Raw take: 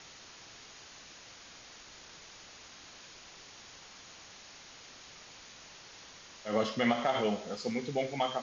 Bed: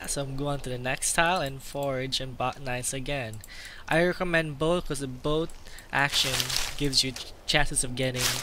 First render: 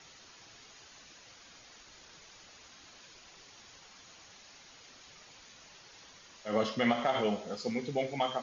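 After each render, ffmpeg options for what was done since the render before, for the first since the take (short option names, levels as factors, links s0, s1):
-af "afftdn=nr=6:nf=-53"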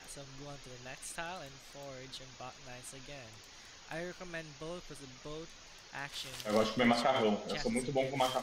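-filter_complex "[1:a]volume=0.119[s0];[0:a][s0]amix=inputs=2:normalize=0"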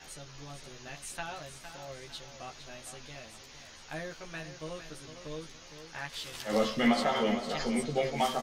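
-filter_complex "[0:a]asplit=2[s0][s1];[s1]adelay=13,volume=0.794[s2];[s0][s2]amix=inputs=2:normalize=0,asplit=2[s3][s4];[s4]aecho=0:1:458|916|1374|1832:0.316|0.101|0.0324|0.0104[s5];[s3][s5]amix=inputs=2:normalize=0"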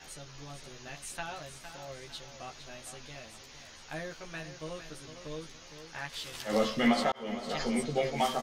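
-filter_complex "[0:a]asplit=2[s0][s1];[s0]atrim=end=7.12,asetpts=PTS-STARTPTS,afade=t=out:st=7.116:d=0.004:c=hsin[s2];[s1]atrim=start=7.12,asetpts=PTS-STARTPTS,afade=t=in:d=0.42[s3];[s2][s3]concat=n=2:v=0:a=1"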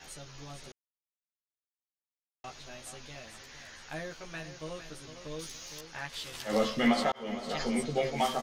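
-filter_complex "[0:a]asettb=1/sr,asplit=3[s0][s1][s2];[s0]atrim=end=3.274[s3];[s1]atrim=start=3.27:end=3.89,asetpts=PTS-STARTPTS,afade=t=in:d=0.004:c=qsin,afade=t=out:st=0.616:d=0.004:c=qsin,equalizer=f=1700:w=2.8:g=7.5[s4];[s2]atrim=start=3.886[s5];[s3][s4]acrossfade=d=0.004:c1=hsin:c2=qsin[s6];[s6][s5]acrossfade=d=0.004:c1=qsin:c2=hsin,asettb=1/sr,asplit=3[s7][s8][s9];[s7]atrim=end=5.394[s10];[s8]atrim=start=5.39:end=5.81,asetpts=PTS-STARTPTS,afade=t=in:d=0.004:c=qsin,afade=t=out:st=0.416:d=0.004:c=qsin,aemphasis=mode=production:type=75kf[s11];[s9]atrim=start=5.806[s12];[s10][s11]acrossfade=d=0.004:c1=hsin:c2=qsin[s13];[s13][s12]acrossfade=d=0.004:c1=qsin:c2=hsin,asplit=3[s14][s15][s16];[s14]atrim=end=0.72,asetpts=PTS-STARTPTS,afade=t=out:st=0.716:d=0.004:c=hsin[s17];[s15]atrim=start=0.72:end=2.44,asetpts=PTS-STARTPTS,volume=0[s18];[s16]atrim=start=2.44,asetpts=PTS-STARTPTS,afade=t=in:d=0.004:c=hsin[s19];[s17][s18][s19]concat=n=3:v=0:a=1"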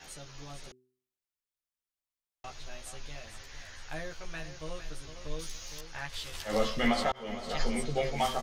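-af "bandreject=f=126.9:t=h:w=4,bandreject=f=253.8:t=h:w=4,bandreject=f=380.7:t=h:w=4,asubboost=boost=6:cutoff=82"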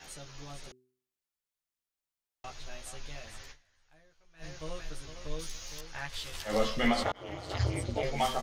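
-filter_complex "[0:a]asettb=1/sr,asplit=3[s0][s1][s2];[s0]atrim=end=7.034[s3];[s1]atrim=start=7.03:end=8.03,asetpts=PTS-STARTPTS,afade=t=in:d=0.004:c=qsin,afade=t=out:st=0.996:d=0.004:c=qsin,aeval=exprs='val(0)*sin(2*PI*96*n/s)':c=same[s4];[s2]atrim=start=8.026[s5];[s3][s4]acrossfade=d=0.004:c1=hsin:c2=qsin[s6];[s6][s5]acrossfade=d=0.004:c1=qsin:c2=hsin,asplit=3[s7][s8][s9];[s7]atrim=end=3.77,asetpts=PTS-STARTPTS,afade=t=out:st=3.51:d=0.26:c=exp:silence=0.0630957[s10];[s8]atrim=start=3.77:end=4.18,asetpts=PTS-STARTPTS,volume=0.0631[s11];[s9]atrim=start=4.18,asetpts=PTS-STARTPTS,afade=t=in:d=0.26:c=exp:silence=0.0630957[s12];[s10][s11][s12]concat=n=3:v=0:a=1"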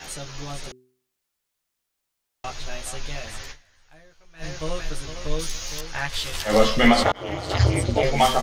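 -af "volume=3.76"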